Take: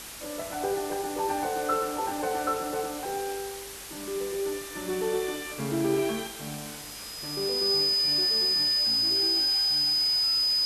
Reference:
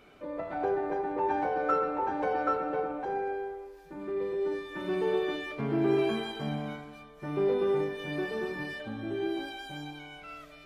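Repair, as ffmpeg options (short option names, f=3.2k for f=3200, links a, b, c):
-af "bandreject=f=50.9:t=h:w=4,bandreject=f=101.8:t=h:w=4,bandreject=f=152.7:t=h:w=4,bandreject=f=5k:w=30,afwtdn=0.01,asetnsamples=n=441:p=0,asendcmd='6.27 volume volume 5dB',volume=0dB"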